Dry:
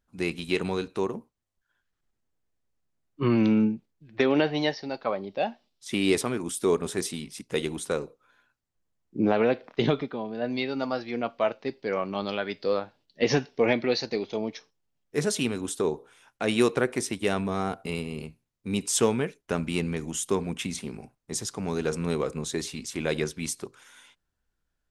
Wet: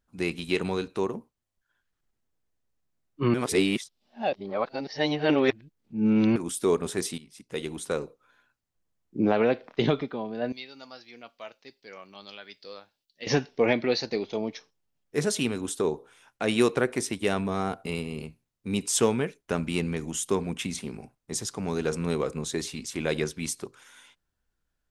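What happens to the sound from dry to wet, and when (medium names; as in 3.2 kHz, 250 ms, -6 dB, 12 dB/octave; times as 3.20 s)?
3.34–6.36 s: reverse
7.18–8.02 s: fade in, from -15 dB
10.52–13.27 s: pre-emphasis filter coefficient 0.9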